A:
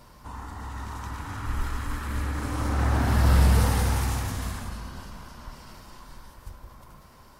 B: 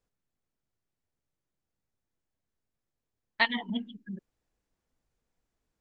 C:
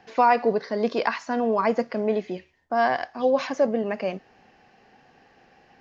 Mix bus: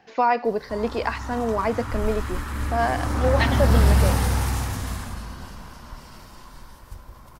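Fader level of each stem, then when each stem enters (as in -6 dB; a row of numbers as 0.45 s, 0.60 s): +2.0 dB, -0.5 dB, -1.5 dB; 0.45 s, 0.00 s, 0.00 s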